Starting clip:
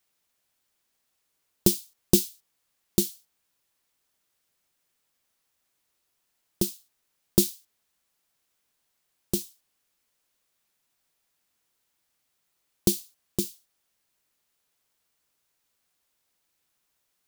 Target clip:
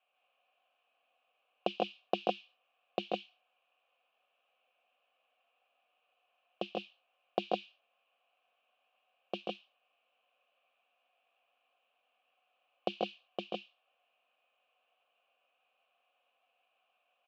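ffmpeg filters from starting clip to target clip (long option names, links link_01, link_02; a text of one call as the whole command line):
ffmpeg -i in.wav -filter_complex "[0:a]highpass=frequency=180:width=0.5412,highpass=frequency=180:width=1.3066,equalizer=frequency=360:width_type=q:width=4:gain=-7,equalizer=frequency=530:width_type=q:width=4:gain=8,equalizer=frequency=1800:width_type=q:width=4:gain=6,equalizer=frequency=2900:width_type=q:width=4:gain=10,lowpass=frequency=3500:width=0.5412,lowpass=frequency=3500:width=1.3066,acompressor=threshold=-23dB:ratio=6,asplit=3[link_01][link_02][link_03];[link_01]bandpass=frequency=730:width_type=q:width=8,volume=0dB[link_04];[link_02]bandpass=frequency=1090:width_type=q:width=8,volume=-6dB[link_05];[link_03]bandpass=frequency=2440:width_type=q:width=8,volume=-9dB[link_06];[link_04][link_05][link_06]amix=inputs=3:normalize=0,aecho=1:1:136|155|159:0.631|0.596|0.668,volume=11dB" out.wav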